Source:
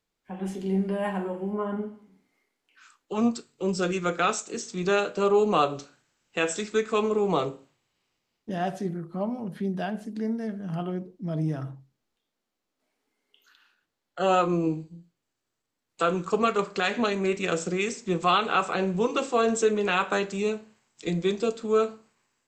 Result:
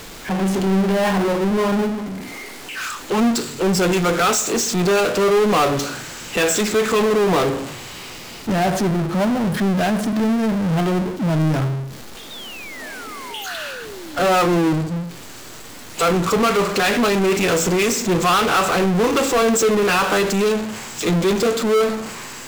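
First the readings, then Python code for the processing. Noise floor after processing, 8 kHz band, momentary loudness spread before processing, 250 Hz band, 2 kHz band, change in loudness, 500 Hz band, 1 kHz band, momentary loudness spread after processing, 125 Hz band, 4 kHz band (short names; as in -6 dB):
-36 dBFS, +14.5 dB, 11 LU, +10.0 dB, +9.5 dB, +8.5 dB, +8.0 dB, +7.5 dB, 15 LU, +11.0 dB, +11.0 dB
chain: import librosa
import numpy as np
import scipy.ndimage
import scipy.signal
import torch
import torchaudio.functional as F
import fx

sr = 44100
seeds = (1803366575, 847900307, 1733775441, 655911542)

y = fx.power_curve(x, sr, exponent=0.35)
y = fx.spec_paint(y, sr, seeds[0], shape='fall', start_s=12.3, length_s=1.94, low_hz=260.0, high_hz=3800.0, level_db=-36.0)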